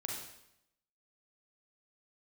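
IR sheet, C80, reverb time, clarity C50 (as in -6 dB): 5.0 dB, 0.80 s, 1.5 dB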